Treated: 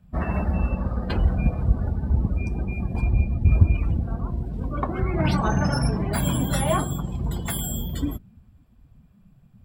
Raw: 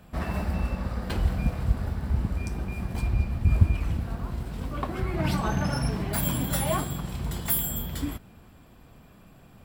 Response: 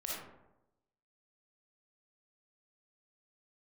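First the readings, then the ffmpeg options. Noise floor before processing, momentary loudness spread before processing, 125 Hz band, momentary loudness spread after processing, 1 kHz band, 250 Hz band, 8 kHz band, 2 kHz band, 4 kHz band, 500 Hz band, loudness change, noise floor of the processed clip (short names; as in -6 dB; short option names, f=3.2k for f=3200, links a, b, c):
-53 dBFS, 8 LU, +4.5 dB, 7 LU, +4.0 dB, +4.5 dB, +0.5 dB, +2.5 dB, +1.5 dB, +4.5 dB, +3.5 dB, -55 dBFS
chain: -filter_complex "[0:a]acrossover=split=9300[a][b];[b]acompressor=threshold=-41dB:ratio=4:attack=1:release=60[c];[a][c]amix=inputs=2:normalize=0,afftdn=nr=20:nf=-39,asplit=2[d][e];[e]asoftclip=type=hard:threshold=-18.5dB,volume=-7dB[f];[d][f]amix=inputs=2:normalize=0,volume=1.5dB"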